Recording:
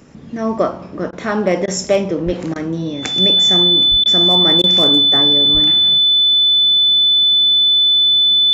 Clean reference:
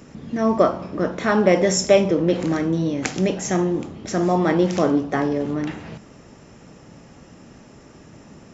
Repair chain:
clipped peaks rebuilt −4.5 dBFS
notch filter 3,500 Hz, Q 30
high-pass at the plosives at 0:02.25/0:03.90/0:05.53
repair the gap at 0:01.11/0:01.66/0:02.54/0:04.04/0:04.62, 16 ms

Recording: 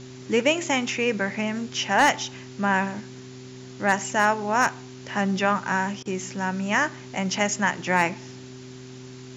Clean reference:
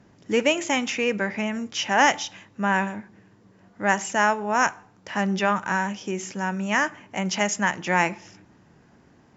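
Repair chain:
clipped peaks rebuilt −8.5 dBFS
hum removal 127.7 Hz, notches 3
repair the gap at 0:06.03, 24 ms
noise reduction from a noise print 14 dB

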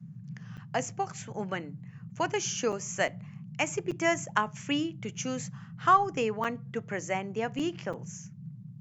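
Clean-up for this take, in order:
repair the gap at 0:00.57/0:02.72/0:03.08/0:03.91/0:06.44/0:07.59/0:07.93, 5.7 ms
noise reduction from a noise print 30 dB

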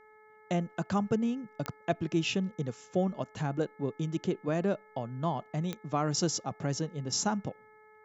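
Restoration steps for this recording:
click removal
hum removal 430 Hz, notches 5

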